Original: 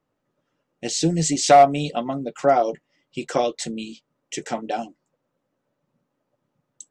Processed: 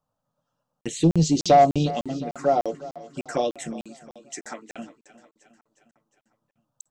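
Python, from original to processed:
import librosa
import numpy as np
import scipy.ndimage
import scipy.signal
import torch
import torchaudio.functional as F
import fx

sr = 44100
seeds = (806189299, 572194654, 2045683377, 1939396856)

y = fx.low_shelf(x, sr, hz=360.0, db=7.0, at=(0.86, 1.92))
y = fx.highpass(y, sr, hz=fx.line((3.73, 170.0), (4.77, 520.0)), slope=12, at=(3.73, 4.77), fade=0.02)
y = fx.env_phaser(y, sr, low_hz=360.0, high_hz=1800.0, full_db=-17.5)
y = 10.0 ** (-5.5 / 20.0) * np.tanh(y / 10.0 ** (-5.5 / 20.0))
y = fx.echo_feedback(y, sr, ms=358, feedback_pct=57, wet_db=-17.0)
y = fx.buffer_crackle(y, sr, first_s=0.81, period_s=0.3, block=2048, kind='zero')
y = y * librosa.db_to_amplitude(-1.0)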